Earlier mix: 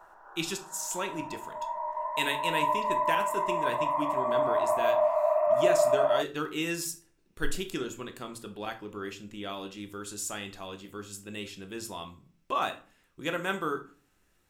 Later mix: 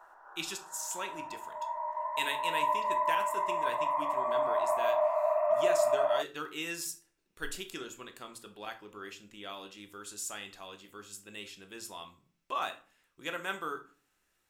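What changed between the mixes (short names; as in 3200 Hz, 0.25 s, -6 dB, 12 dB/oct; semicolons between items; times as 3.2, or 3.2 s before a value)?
speech -3.0 dB; master: add low shelf 410 Hz -11 dB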